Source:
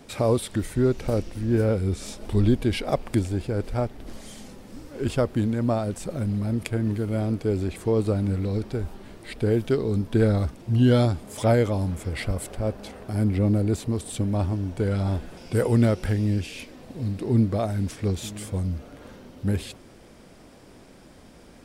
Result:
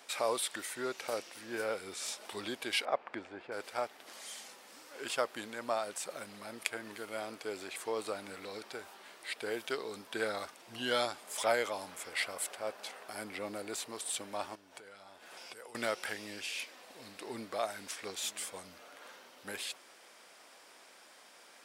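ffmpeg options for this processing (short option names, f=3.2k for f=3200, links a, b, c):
-filter_complex "[0:a]asettb=1/sr,asplit=3[a][b][c];[a]atrim=end=2.854[d];[b]atrim=start=2.85:end=3.52,asetpts=PTS-STARTPTS,afade=t=in:d=0.004:c=qsin,afade=t=out:st=0.666:d=0.004:c=qsin,lowpass=1.8k[e];[c]atrim=start=3.516[f];[d][e]acrossfade=d=0.004:c1=hsin:c2=qsin[g];[g][f]acrossfade=d=0.004:c1=qsin:c2=hsin,asettb=1/sr,asplit=3[h][i][j];[h]atrim=end=14.554[k];[i]atrim=start=14.55:end=15.75,asetpts=PTS-STARTPTS,afade=t=in:d=0.004:c=qsin,afade=t=out:st=1.196:d=0.004:c=qsin,acompressor=threshold=-35dB:ratio=12:attack=3.2:release=140:knee=1:detection=peak[l];[j]atrim=start=15.746[m];[k][l]acrossfade=d=0.004:c1=hsin:c2=qsin[n];[n][m]acrossfade=d=0.004:c1=qsin:c2=hsin,highpass=940"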